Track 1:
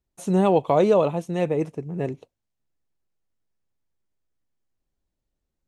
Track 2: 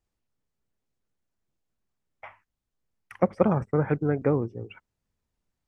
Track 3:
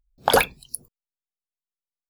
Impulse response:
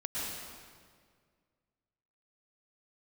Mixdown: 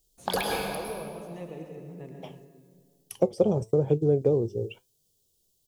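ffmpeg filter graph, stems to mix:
-filter_complex "[0:a]acompressor=threshold=0.0398:ratio=2.5,volume=0.251,asplit=3[s0][s1][s2];[s1]volume=0.473[s3];[1:a]firequalizer=gain_entry='entry(270,0);entry(390,13);entry(1300,-15);entry(2000,-17);entry(3100,11)':delay=0.05:min_phase=1,crystalizer=i=3:c=0,equalizer=f=140:w=0.91:g=7.5,volume=1.12[s4];[2:a]equalizer=f=4300:w=4.6:g=6.5,bandreject=f=1400:w=9.2,volume=0.355,asplit=2[s5][s6];[s6]volume=0.562[s7];[s2]apad=whole_len=92501[s8];[s5][s8]sidechaincompress=threshold=0.00562:ratio=8:attack=16:release=390[s9];[s0][s4]amix=inputs=2:normalize=0,flanger=delay=6.1:depth=4:regen=73:speed=0.99:shape=triangular,acompressor=threshold=0.0708:ratio=2,volume=1[s10];[3:a]atrim=start_sample=2205[s11];[s3][s7]amix=inputs=2:normalize=0[s12];[s12][s11]afir=irnorm=-1:irlink=0[s13];[s9][s10][s13]amix=inputs=3:normalize=0"

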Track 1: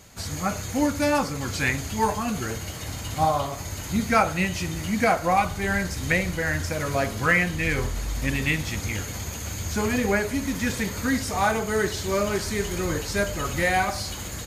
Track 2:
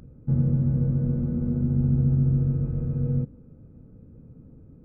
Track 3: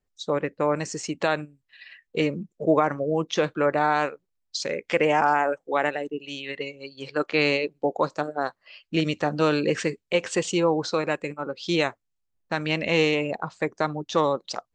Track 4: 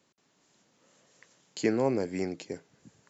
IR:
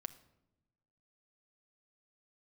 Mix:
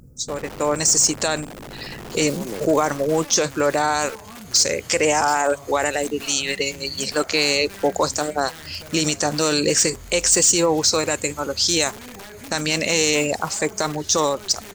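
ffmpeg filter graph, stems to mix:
-filter_complex "[0:a]highpass=f=42:w=0.5412,highpass=f=42:w=1.3066,acompressor=threshold=0.0501:ratio=6,adelay=2100,volume=1.26[s0];[1:a]alimiter=limit=0.15:level=0:latency=1:release=56,volume=0.944[s1];[2:a]bass=f=250:g=-3,treble=f=4000:g=14,aexciter=amount=3.4:drive=7.5:freq=4800,asoftclip=type=tanh:threshold=0.501,volume=0.531,asplit=2[s2][s3];[3:a]adelay=550,volume=0.211[s4];[s3]apad=whole_len=160761[s5];[s4][s5]sidechaincompress=threshold=0.00708:ratio=8:attack=16:release=159[s6];[s2][s6]amix=inputs=2:normalize=0,dynaudnorm=f=130:g=9:m=5.31,alimiter=limit=0.355:level=0:latency=1:release=27,volume=1[s7];[s0][s1]amix=inputs=2:normalize=0,aeval=exprs='(mod(11.2*val(0)+1,2)-1)/11.2':c=same,alimiter=level_in=2.51:limit=0.0631:level=0:latency=1:release=120,volume=0.398,volume=1[s8];[s7][s8]amix=inputs=2:normalize=0"

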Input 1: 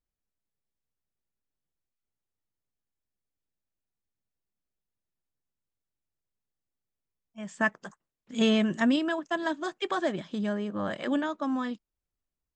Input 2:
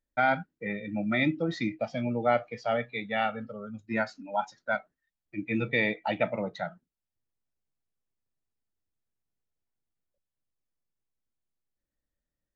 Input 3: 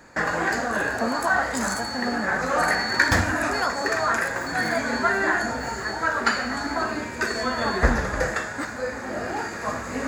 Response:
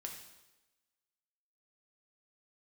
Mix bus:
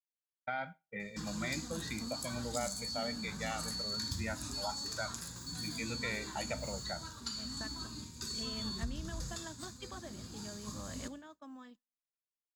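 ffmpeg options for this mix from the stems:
-filter_complex "[0:a]acompressor=threshold=0.0355:ratio=6,volume=0.188,asplit=2[s0][s1];[s1]volume=0.133[s2];[1:a]equalizer=f=310:t=o:w=0.61:g=-6.5,adelay=300,volume=0.531,asplit=2[s3][s4];[s4]volume=0.112[s5];[2:a]firequalizer=gain_entry='entry(170,0);entry(300,-12);entry(650,-30);entry(1000,-15);entry(1800,-27);entry(3600,2)':delay=0.05:min_phase=1,acompressor=threshold=0.0316:ratio=5,adelay=1000,volume=0.335,asplit=2[s6][s7];[s7]volume=0.708[s8];[s0][s3]amix=inputs=2:normalize=0,aemphasis=mode=production:type=50fm,acompressor=threshold=0.01:ratio=2.5,volume=1[s9];[3:a]atrim=start_sample=2205[s10];[s2][s5][s8]amix=inputs=3:normalize=0[s11];[s11][s10]afir=irnorm=-1:irlink=0[s12];[s6][s9][s12]amix=inputs=3:normalize=0,agate=range=0.0224:threshold=0.00794:ratio=3:detection=peak"

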